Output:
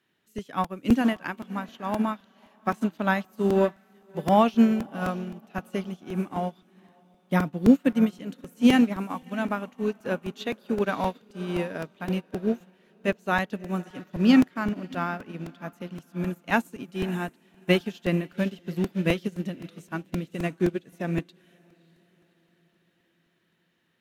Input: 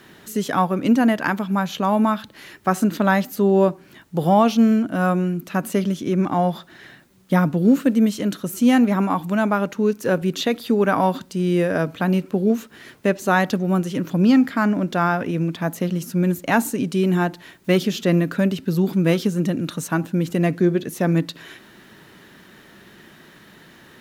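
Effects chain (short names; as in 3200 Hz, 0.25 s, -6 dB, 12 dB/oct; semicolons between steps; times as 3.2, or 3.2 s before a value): HPF 58 Hz; bell 2700 Hz +6 dB 0.88 oct; diffused feedback echo 0.589 s, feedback 53%, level -12 dB; crackling interface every 0.26 s, samples 128, repeat, from 0.38; upward expander 2.5:1, over -29 dBFS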